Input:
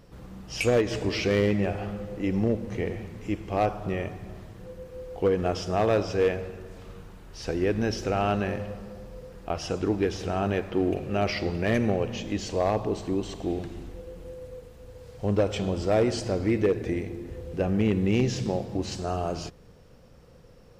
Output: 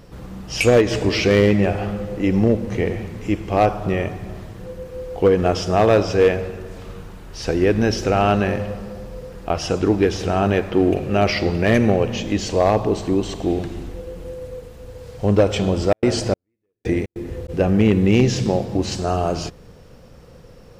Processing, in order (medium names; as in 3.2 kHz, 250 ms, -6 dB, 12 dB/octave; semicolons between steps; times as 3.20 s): 15.84–17.48 s: trance gate "x.xxx.....x" 146 bpm -60 dB; trim +8.5 dB